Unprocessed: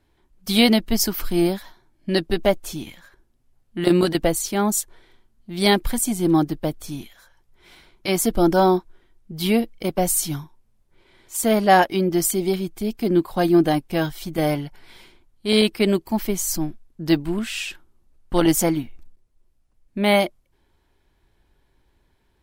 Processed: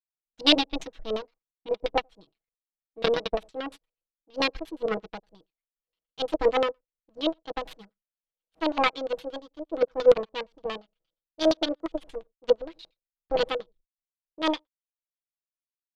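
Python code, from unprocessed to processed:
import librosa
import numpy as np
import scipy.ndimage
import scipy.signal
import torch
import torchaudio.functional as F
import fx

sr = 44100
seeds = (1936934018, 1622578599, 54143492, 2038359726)

y = fx.speed_glide(x, sr, from_pct=124, to_pct=157)
y = y + 10.0 ** (-21.0 / 20.0) * np.pad(y, (int(91 * sr / 1000.0), 0))[:len(y)]
y = fx.power_curve(y, sr, exponent=2.0)
y = y + 0.77 * np.pad(y, (int(6.2 * sr / 1000.0), 0))[:len(y)]
y = fx.filter_lfo_lowpass(y, sr, shape='square', hz=8.6, low_hz=590.0, high_hz=3500.0, q=2.6)
y = y * librosa.db_to_amplitude(-2.5)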